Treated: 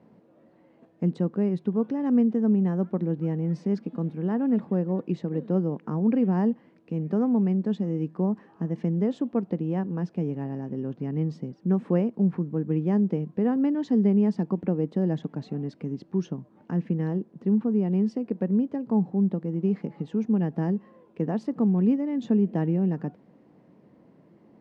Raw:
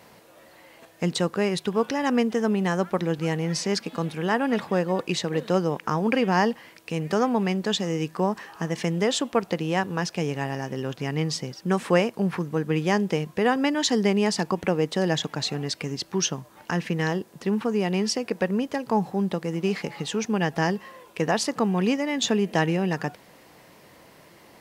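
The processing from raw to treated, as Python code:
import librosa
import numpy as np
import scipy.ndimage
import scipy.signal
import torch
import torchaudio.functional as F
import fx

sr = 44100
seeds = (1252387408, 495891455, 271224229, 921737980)

y = fx.bandpass_q(x, sr, hz=220.0, q=1.6)
y = y * librosa.db_to_amplitude(3.5)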